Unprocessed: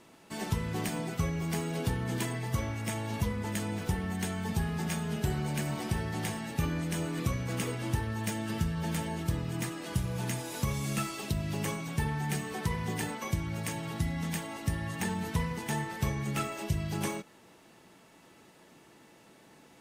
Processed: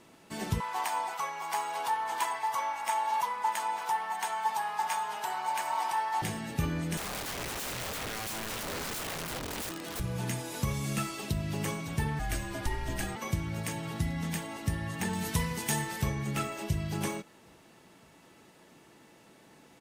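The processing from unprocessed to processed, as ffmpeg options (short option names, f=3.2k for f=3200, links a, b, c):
-filter_complex "[0:a]asettb=1/sr,asplit=3[a][b][c];[a]atrim=end=0.604[d];[b]atrim=start=0.6:end=6.22,asetpts=PTS-STARTPTS,afade=t=in:d=0.004:c=qsin,afade=t=out:st=5.616:d=0.004:c=qsin,highpass=f=910:t=q:w=7.3[e];[c]atrim=start=6.216[f];[d][e]acrossfade=d=0.004:c1=hsin:c2=qsin[g];[g][f]acrossfade=d=0.004:c1=qsin:c2=hsin,asettb=1/sr,asplit=3[h][i][j];[h]atrim=end=6.974[k];[i]atrim=start=6.97:end=10,asetpts=PTS-STARTPTS,afade=t=in:d=0.004:c=qsin,afade=t=out:st=3.026:d=0.004:c=qsin,aeval=exprs='(mod(39.8*val(0)+1,2)-1)/39.8':c=same[l];[j]atrim=start=9.996[m];[k][l]acrossfade=d=0.004:c1=hsin:c2=qsin[n];[n][m]acrossfade=d=0.004:c1=qsin:c2=hsin,asplit=2[o][p];[p]afade=t=in:st=11.04:d=0.01,afade=t=out:st=11.46:d=0.01,aecho=0:1:560|1120|1680|2240|2800|3360|3920|4480|5040|5600|6160|6720:0.188365|0.150692|0.120554|0.0964428|0.0771543|0.0617234|0.0493787|0.039503|0.0316024|0.0252819|0.0202255|0.0161804[q];[o][q]amix=inputs=2:normalize=0,asettb=1/sr,asplit=3[r][s][t];[r]atrim=end=12.194[u];[s]atrim=start=12.19:end=13.16,asetpts=PTS-STARTPTS,afade=t=in:d=0.004:c=qsin,afade=t=out:st=0.966:d=0.004:c=qsin,afreqshift=-100[v];[t]atrim=start=13.156[w];[u][v]acrossfade=d=0.004:c1=hsin:c2=qsin[x];[x][w]acrossfade=d=0.004:c1=qsin:c2=hsin,asettb=1/sr,asplit=3[y][z][aa];[y]atrim=end=15.134[ab];[z]atrim=start=15.13:end=16.02,asetpts=PTS-STARTPTS,afade=t=in:d=0.004:c=qsin,afade=t=out:st=0.886:d=0.004:c=qsin,highshelf=f=3.5k:g=11[ac];[aa]atrim=start=16.016[ad];[ab][ac]acrossfade=d=0.004:c1=hsin:c2=qsin[ae];[ae][ad]acrossfade=d=0.004:c1=qsin:c2=hsin"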